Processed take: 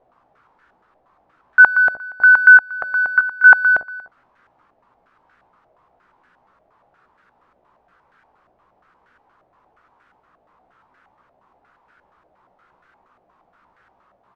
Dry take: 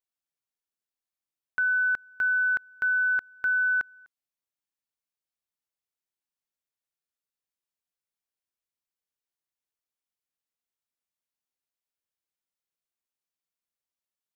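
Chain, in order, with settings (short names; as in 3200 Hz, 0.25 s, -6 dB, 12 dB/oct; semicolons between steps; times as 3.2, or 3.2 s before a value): power-law curve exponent 0.5; doubler 16 ms -5.5 dB; stepped low-pass 8.5 Hz 680–1500 Hz; gain +3 dB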